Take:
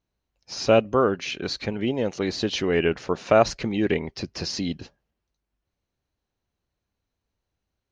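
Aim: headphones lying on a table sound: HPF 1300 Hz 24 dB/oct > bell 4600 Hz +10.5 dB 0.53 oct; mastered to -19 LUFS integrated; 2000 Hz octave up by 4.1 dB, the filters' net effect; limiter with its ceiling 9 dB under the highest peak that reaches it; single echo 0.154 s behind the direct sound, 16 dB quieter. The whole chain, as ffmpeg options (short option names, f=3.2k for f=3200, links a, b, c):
-af "equalizer=f=2k:t=o:g=5,alimiter=limit=-12.5dB:level=0:latency=1,highpass=f=1.3k:w=0.5412,highpass=f=1.3k:w=1.3066,equalizer=f=4.6k:t=o:w=0.53:g=10.5,aecho=1:1:154:0.158,volume=7.5dB"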